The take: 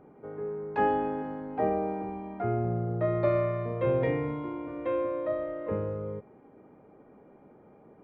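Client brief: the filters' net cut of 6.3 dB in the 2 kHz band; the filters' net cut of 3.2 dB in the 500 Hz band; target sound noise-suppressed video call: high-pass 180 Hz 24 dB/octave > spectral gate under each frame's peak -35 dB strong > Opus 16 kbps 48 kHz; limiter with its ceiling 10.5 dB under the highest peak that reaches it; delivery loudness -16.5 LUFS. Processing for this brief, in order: peaking EQ 500 Hz -3.5 dB; peaking EQ 2 kHz -7.5 dB; peak limiter -27 dBFS; high-pass 180 Hz 24 dB/octave; spectral gate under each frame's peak -35 dB strong; trim +21 dB; Opus 16 kbps 48 kHz

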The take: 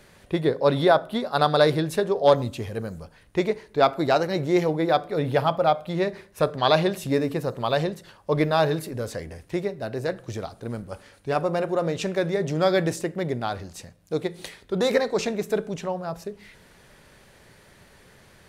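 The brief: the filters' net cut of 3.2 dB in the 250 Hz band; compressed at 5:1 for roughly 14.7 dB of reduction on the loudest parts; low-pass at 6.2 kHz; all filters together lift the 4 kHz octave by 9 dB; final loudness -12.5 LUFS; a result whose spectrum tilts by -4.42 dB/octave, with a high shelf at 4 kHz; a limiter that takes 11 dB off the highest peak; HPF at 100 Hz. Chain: high-pass 100 Hz; low-pass 6.2 kHz; peaking EQ 250 Hz -5 dB; treble shelf 4 kHz +6.5 dB; peaking EQ 4 kHz +7.5 dB; compression 5:1, threshold -29 dBFS; trim +24 dB; peak limiter -1 dBFS

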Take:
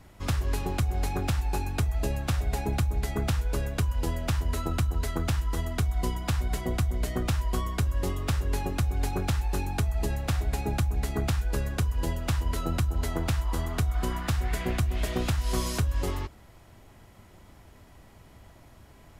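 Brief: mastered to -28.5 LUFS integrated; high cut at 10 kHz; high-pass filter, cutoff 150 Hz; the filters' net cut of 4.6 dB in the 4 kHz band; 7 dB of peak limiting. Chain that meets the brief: high-pass 150 Hz; low-pass 10 kHz; peaking EQ 4 kHz -6 dB; trim +8.5 dB; peak limiter -16.5 dBFS

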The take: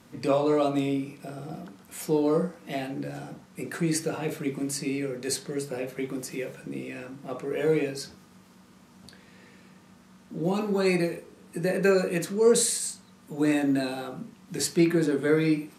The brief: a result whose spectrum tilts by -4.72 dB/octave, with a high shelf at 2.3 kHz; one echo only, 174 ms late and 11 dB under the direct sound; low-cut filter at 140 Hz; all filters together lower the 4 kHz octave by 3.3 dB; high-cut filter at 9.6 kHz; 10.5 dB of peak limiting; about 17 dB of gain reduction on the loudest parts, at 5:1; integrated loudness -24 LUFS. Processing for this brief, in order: high-pass 140 Hz; low-pass 9.6 kHz; treble shelf 2.3 kHz +3.5 dB; peaking EQ 4 kHz -7 dB; compression 5:1, threshold -36 dBFS; peak limiter -34 dBFS; delay 174 ms -11 dB; trim +19 dB

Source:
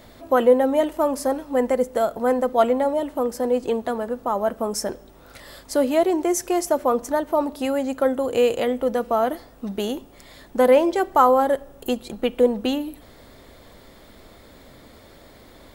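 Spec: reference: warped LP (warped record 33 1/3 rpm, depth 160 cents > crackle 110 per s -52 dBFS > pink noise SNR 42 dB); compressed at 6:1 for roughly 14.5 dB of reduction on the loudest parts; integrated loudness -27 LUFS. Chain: compression 6:1, threshold -27 dBFS; warped record 33 1/3 rpm, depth 160 cents; crackle 110 per s -52 dBFS; pink noise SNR 42 dB; trim +4.5 dB

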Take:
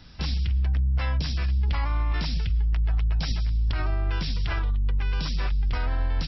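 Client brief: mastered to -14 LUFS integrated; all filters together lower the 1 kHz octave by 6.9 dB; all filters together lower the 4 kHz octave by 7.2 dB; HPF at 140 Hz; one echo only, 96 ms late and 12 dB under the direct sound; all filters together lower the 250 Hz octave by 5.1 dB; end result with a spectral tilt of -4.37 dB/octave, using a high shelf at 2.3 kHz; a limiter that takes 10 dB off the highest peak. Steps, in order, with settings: high-pass 140 Hz; peaking EQ 250 Hz -6 dB; peaking EQ 1 kHz -7.5 dB; treble shelf 2.3 kHz -3.5 dB; peaking EQ 4 kHz -5.5 dB; peak limiter -30.5 dBFS; delay 96 ms -12 dB; trim +26.5 dB

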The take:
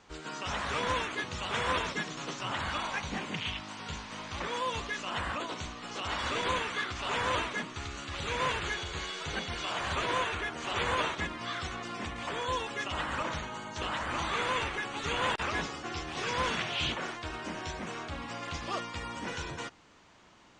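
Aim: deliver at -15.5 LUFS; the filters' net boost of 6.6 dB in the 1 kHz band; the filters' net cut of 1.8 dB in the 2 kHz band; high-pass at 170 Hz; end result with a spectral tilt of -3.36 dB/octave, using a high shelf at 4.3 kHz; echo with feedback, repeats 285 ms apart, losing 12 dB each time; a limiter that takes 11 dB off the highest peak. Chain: high-pass 170 Hz; peaking EQ 1 kHz +9 dB; peaking EQ 2 kHz -4.5 dB; treble shelf 4.3 kHz -6.5 dB; peak limiter -25 dBFS; feedback delay 285 ms, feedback 25%, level -12 dB; trim +19 dB

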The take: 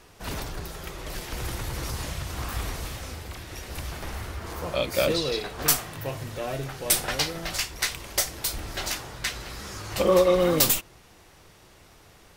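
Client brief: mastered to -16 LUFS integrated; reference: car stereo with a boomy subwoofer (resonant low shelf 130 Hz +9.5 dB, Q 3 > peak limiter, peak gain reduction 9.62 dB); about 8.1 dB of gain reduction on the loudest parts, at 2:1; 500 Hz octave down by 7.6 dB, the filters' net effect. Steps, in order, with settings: peaking EQ 500 Hz -8 dB; compression 2:1, threshold -31 dBFS; resonant low shelf 130 Hz +9.5 dB, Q 3; trim +14.5 dB; peak limiter -5 dBFS

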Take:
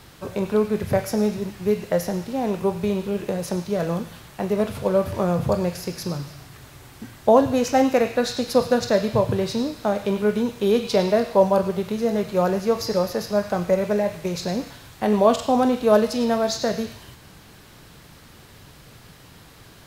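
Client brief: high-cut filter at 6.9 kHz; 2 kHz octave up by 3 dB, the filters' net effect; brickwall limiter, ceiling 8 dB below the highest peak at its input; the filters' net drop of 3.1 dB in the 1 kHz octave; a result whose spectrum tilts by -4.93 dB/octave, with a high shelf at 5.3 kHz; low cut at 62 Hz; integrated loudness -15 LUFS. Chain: high-pass 62 Hz; low-pass 6.9 kHz; peaking EQ 1 kHz -5.5 dB; peaking EQ 2 kHz +5 dB; treble shelf 5.3 kHz +5 dB; trim +9.5 dB; peak limiter -3 dBFS

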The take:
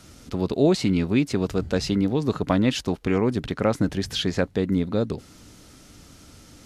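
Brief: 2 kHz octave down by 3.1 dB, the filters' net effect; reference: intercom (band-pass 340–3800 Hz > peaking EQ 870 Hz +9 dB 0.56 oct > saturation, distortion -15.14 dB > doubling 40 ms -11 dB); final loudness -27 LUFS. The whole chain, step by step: band-pass 340–3800 Hz; peaking EQ 870 Hz +9 dB 0.56 oct; peaking EQ 2 kHz -4.5 dB; saturation -15 dBFS; doubling 40 ms -11 dB; trim +1.5 dB

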